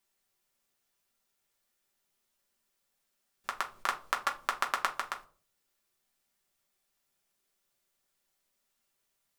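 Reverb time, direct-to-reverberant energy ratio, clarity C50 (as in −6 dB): 0.40 s, 0.5 dB, 14.5 dB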